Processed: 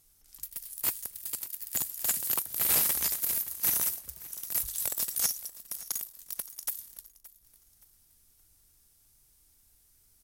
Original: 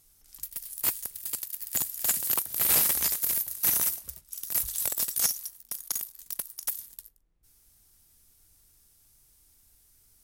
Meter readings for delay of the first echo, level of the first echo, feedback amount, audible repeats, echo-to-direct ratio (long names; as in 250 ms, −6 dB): 571 ms, −18.5 dB, 34%, 2, −18.0 dB